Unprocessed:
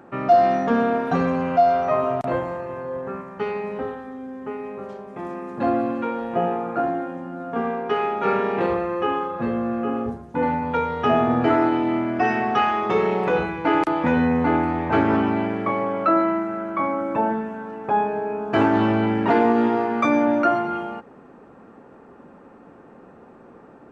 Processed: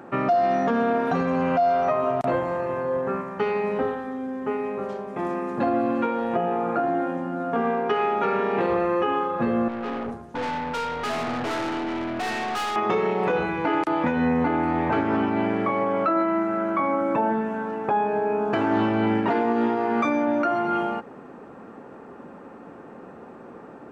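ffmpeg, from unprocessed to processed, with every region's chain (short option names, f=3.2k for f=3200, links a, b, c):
-filter_complex "[0:a]asettb=1/sr,asplit=3[a][b][c];[a]atrim=end=9.684[d];[b]atrim=start=9.68:end=12.76,asetpts=PTS-STARTPTS,afade=t=in:d=0.004:c=qsin,afade=t=out:st=3.076:d=0.004:c=qsin,equalizer=f=180:w=0.31:g=-4,aeval=exprs='(tanh(31.6*val(0)+0.45)-tanh(0.45))/31.6':c=same[e];[c]atrim=start=12.756[f];[d][e]acrossfade=d=0.004:c1=hsin:c2=qsin[g];[g][f]acrossfade=d=0.004:c1=qsin:c2=hsin,lowshelf=f=73:g=-9,alimiter=limit=-18.5dB:level=0:latency=1:release=295,volume=4.5dB"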